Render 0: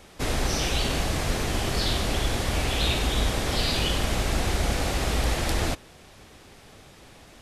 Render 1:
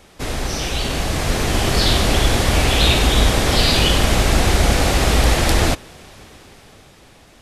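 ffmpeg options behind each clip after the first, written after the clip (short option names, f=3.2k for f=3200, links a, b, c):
-af "dynaudnorm=f=240:g=11:m=9dB,volume=2dB"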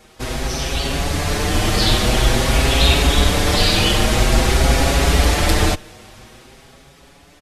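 -filter_complex "[0:a]asplit=2[a][b];[b]adelay=6,afreqshift=0.49[c];[a][c]amix=inputs=2:normalize=1,volume=3dB"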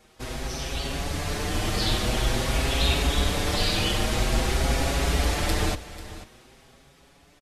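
-af "aecho=1:1:491:0.168,volume=-9dB"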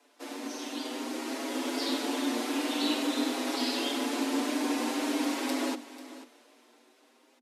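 -af "afreqshift=230,volume=-7dB"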